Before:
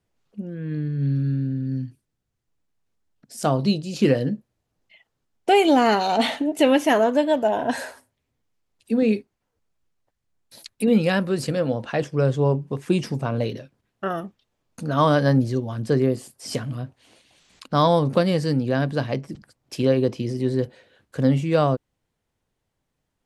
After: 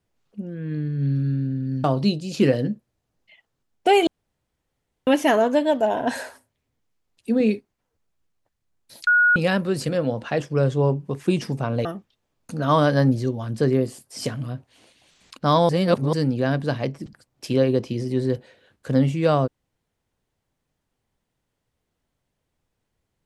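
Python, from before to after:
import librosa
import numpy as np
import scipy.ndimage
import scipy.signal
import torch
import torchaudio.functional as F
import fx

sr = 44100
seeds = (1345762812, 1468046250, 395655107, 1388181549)

y = fx.edit(x, sr, fx.cut(start_s=1.84, length_s=1.62),
    fx.room_tone_fill(start_s=5.69, length_s=1.0),
    fx.bleep(start_s=10.69, length_s=0.29, hz=1450.0, db=-13.0),
    fx.cut(start_s=13.47, length_s=0.67),
    fx.reverse_span(start_s=17.98, length_s=0.44), tone=tone)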